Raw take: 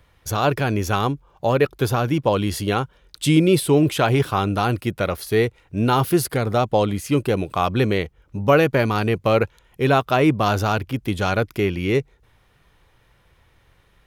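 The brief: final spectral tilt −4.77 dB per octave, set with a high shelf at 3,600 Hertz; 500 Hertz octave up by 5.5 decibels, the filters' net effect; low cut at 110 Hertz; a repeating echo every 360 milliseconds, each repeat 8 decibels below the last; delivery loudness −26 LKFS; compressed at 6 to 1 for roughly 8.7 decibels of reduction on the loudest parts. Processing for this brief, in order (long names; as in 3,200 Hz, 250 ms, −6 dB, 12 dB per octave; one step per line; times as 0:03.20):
high-pass filter 110 Hz
parametric band 500 Hz +6.5 dB
high-shelf EQ 3,600 Hz +8 dB
downward compressor 6 to 1, threshold −16 dBFS
repeating echo 360 ms, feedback 40%, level −8 dB
level −4.5 dB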